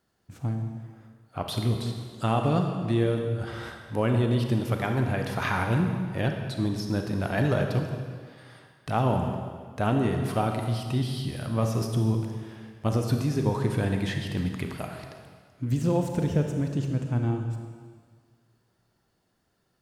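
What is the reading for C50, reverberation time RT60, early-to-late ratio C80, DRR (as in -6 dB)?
4.5 dB, 1.8 s, 6.0 dB, 3.5 dB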